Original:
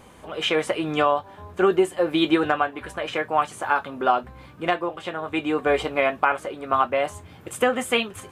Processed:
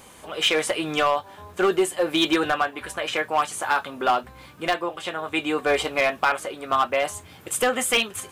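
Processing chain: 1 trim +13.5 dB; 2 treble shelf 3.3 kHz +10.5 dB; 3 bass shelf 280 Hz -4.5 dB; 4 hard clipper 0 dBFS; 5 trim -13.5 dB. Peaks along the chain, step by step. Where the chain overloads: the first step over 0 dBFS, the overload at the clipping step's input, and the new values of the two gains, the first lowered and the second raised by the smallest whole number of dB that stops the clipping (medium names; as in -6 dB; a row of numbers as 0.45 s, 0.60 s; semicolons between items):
+8.5 dBFS, +9.5 dBFS, +9.5 dBFS, 0.0 dBFS, -13.5 dBFS; step 1, 9.5 dB; step 1 +3.5 dB, step 5 -3.5 dB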